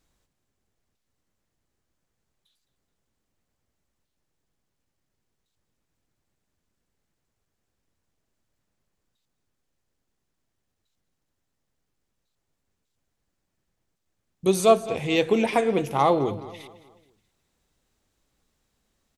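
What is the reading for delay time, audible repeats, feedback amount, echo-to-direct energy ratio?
213 ms, 3, 40%, −15.5 dB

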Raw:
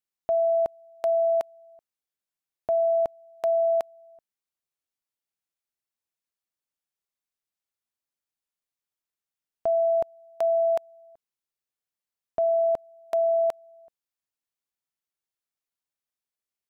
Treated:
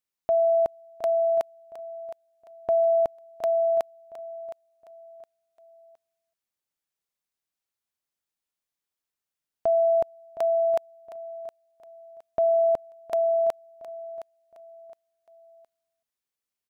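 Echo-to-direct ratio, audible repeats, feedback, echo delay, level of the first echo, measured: −13.5 dB, 3, 33%, 715 ms, −14.0 dB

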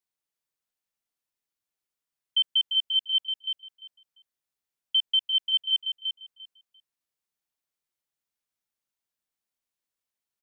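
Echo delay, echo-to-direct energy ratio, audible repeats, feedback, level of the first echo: 346 ms, −7.0 dB, 2, 18%, −7.0 dB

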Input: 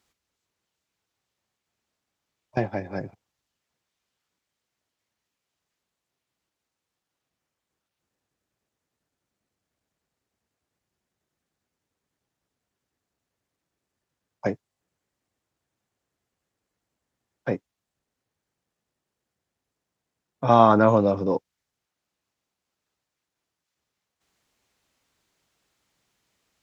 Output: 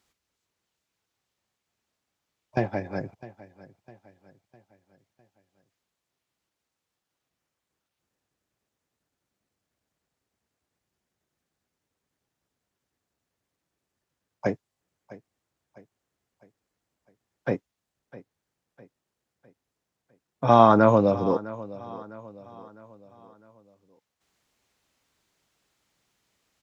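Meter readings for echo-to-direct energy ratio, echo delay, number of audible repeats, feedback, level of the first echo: −17.5 dB, 655 ms, 3, 46%, −18.5 dB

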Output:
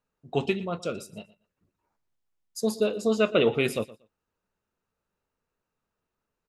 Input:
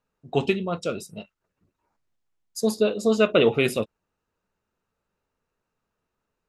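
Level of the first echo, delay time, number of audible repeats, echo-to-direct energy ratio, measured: −19.0 dB, 118 ms, 2, −19.0 dB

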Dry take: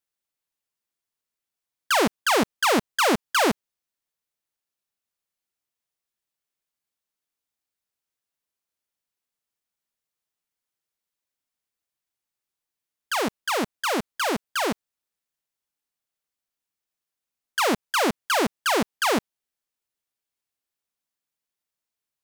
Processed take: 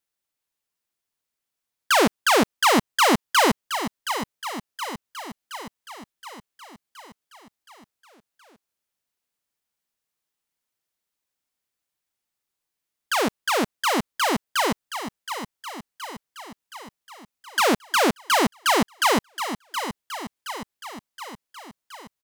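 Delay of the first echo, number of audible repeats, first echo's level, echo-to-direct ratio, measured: 721 ms, 6, −10.0 dB, −8.0 dB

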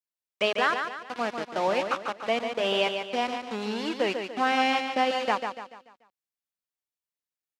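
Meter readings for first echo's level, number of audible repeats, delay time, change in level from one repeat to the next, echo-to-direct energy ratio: −6.5 dB, 4, 145 ms, −7.5 dB, −5.5 dB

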